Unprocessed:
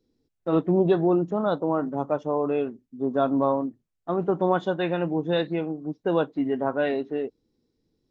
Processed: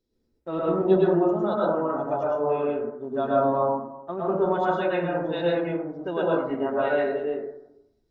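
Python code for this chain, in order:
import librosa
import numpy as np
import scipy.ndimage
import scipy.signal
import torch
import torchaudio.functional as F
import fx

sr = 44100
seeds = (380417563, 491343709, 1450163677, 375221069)

y = fx.peak_eq(x, sr, hz=280.0, db=-10.5, octaves=0.43)
y = y + 0.32 * np.pad(y, (int(3.2 * sr / 1000.0), 0))[:len(y)]
y = fx.rev_plate(y, sr, seeds[0], rt60_s=0.87, hf_ratio=0.25, predelay_ms=95, drr_db=-6.0)
y = y * 10.0 ** (-5.5 / 20.0)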